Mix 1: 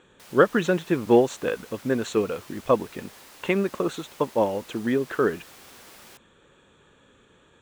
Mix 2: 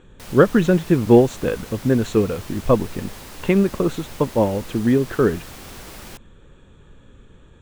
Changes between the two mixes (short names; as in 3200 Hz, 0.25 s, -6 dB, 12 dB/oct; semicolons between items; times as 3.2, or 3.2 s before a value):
background +7.5 dB; master: remove HPF 570 Hz 6 dB/oct